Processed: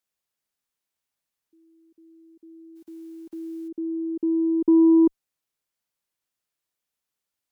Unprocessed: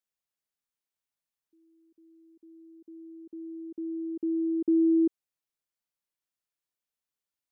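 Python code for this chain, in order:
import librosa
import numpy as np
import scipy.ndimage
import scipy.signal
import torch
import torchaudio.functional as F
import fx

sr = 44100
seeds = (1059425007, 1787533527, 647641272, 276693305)

y = fx.envelope_flatten(x, sr, power=0.6, at=(2.75, 3.67), fade=0.02)
y = fx.cheby_harmonics(y, sr, harmonics=(2, 3), levels_db=(-43, -26), full_scale_db=-18.5)
y = y * 10.0 ** (7.0 / 20.0)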